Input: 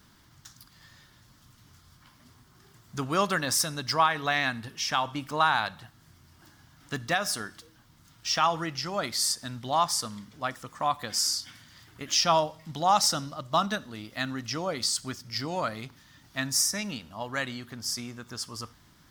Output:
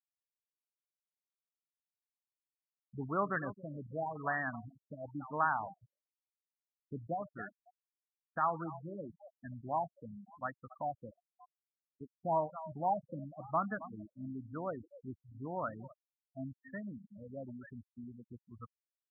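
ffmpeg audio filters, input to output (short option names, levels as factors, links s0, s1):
-af "aecho=1:1:270|540|810|1080:0.2|0.0758|0.0288|0.0109,afftfilt=real='re*gte(hypot(re,im),0.0398)':imag='im*gte(hypot(re,im),0.0398)':win_size=1024:overlap=0.75,afftfilt=real='re*lt(b*sr/1024,580*pow(2000/580,0.5+0.5*sin(2*PI*0.97*pts/sr)))':imag='im*lt(b*sr/1024,580*pow(2000/580,0.5+0.5*sin(2*PI*0.97*pts/sr)))':win_size=1024:overlap=0.75,volume=0.422"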